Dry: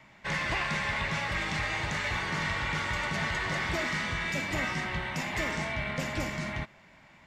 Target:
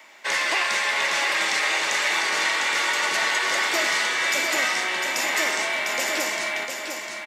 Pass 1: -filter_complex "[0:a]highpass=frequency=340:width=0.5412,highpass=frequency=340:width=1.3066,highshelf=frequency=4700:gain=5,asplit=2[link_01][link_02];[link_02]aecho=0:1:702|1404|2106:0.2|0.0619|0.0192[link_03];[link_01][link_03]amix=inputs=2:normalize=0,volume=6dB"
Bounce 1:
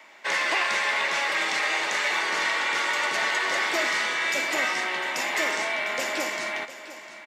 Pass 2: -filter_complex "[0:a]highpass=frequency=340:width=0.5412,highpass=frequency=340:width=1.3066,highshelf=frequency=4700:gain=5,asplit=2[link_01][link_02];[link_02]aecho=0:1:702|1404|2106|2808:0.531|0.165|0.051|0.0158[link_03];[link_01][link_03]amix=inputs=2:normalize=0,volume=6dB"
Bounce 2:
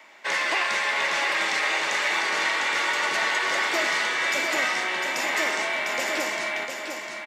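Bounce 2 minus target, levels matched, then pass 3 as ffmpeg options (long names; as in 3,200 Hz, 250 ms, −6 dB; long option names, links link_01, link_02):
8,000 Hz band −4.0 dB
-filter_complex "[0:a]highpass=frequency=340:width=0.5412,highpass=frequency=340:width=1.3066,highshelf=frequency=4700:gain=13.5,asplit=2[link_01][link_02];[link_02]aecho=0:1:702|1404|2106|2808:0.531|0.165|0.051|0.0158[link_03];[link_01][link_03]amix=inputs=2:normalize=0,volume=6dB"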